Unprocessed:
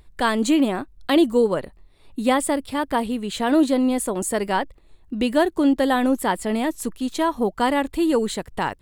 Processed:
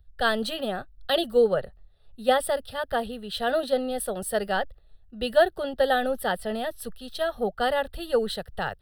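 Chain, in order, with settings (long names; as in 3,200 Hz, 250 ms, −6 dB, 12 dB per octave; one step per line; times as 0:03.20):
phaser with its sweep stopped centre 1,500 Hz, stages 8
multiband upward and downward expander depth 40%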